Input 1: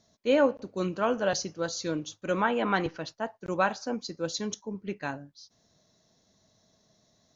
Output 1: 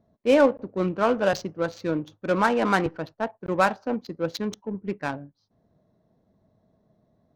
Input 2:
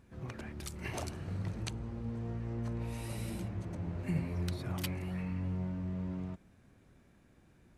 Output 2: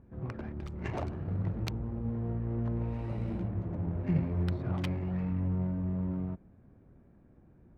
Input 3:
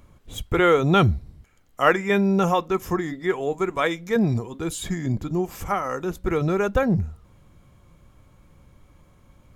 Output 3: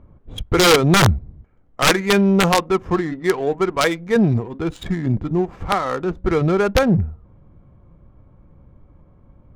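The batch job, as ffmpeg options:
ffmpeg -i in.wav -af "aeval=exprs='(mod(3.35*val(0)+1,2)-1)/3.35':channel_layout=same,adynamicsmooth=sensitivity=4.5:basefreq=970,volume=5dB" out.wav

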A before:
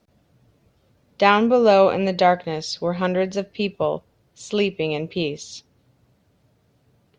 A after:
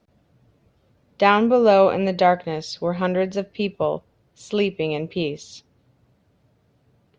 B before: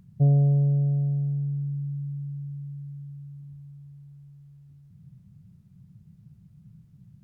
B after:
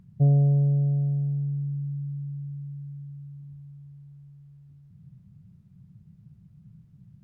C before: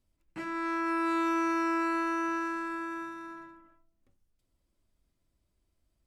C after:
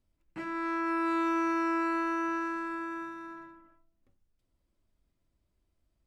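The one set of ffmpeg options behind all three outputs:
ffmpeg -i in.wav -af "highshelf=frequency=4700:gain=-7.5" out.wav

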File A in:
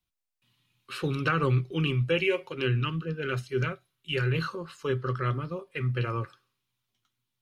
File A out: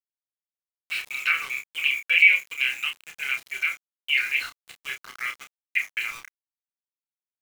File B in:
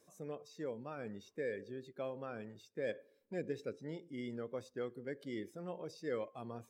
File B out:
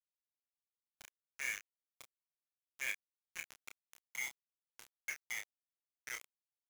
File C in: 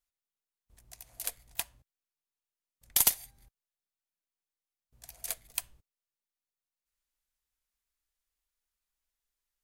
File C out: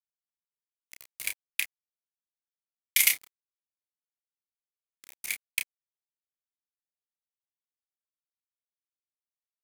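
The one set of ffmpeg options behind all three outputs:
ffmpeg -i in.wav -filter_complex "[0:a]highpass=frequency=2200:width_type=q:width=9.3,aeval=exprs='val(0)*gte(abs(val(0)),0.015)':channel_layout=same,asplit=2[link_01][link_02];[link_02]adelay=30,volume=-6dB[link_03];[link_01][link_03]amix=inputs=2:normalize=0" out.wav

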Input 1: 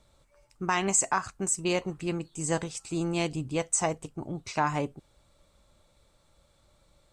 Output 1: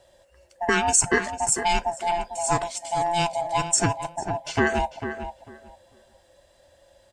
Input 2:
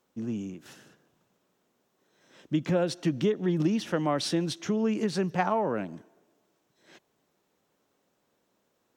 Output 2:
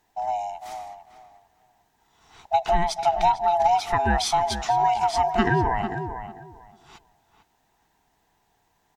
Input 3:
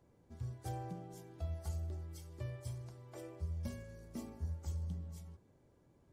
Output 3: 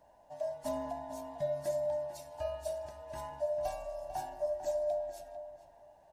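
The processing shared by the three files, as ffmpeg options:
ffmpeg -i in.wav -filter_complex "[0:a]afftfilt=real='real(if(lt(b,1008),b+24*(1-2*mod(floor(b/24),2)),b),0)':imag='imag(if(lt(b,1008),b+24*(1-2*mod(floor(b/24),2)),b),0)':win_size=2048:overlap=0.75,asplit=2[link_01][link_02];[link_02]adelay=447,lowpass=frequency=2000:poles=1,volume=-9dB,asplit=2[link_03][link_04];[link_04]adelay=447,lowpass=frequency=2000:poles=1,volume=0.2,asplit=2[link_05][link_06];[link_06]adelay=447,lowpass=frequency=2000:poles=1,volume=0.2[link_07];[link_03][link_05][link_07]amix=inputs=3:normalize=0[link_08];[link_01][link_08]amix=inputs=2:normalize=0,volume=5.5dB" out.wav

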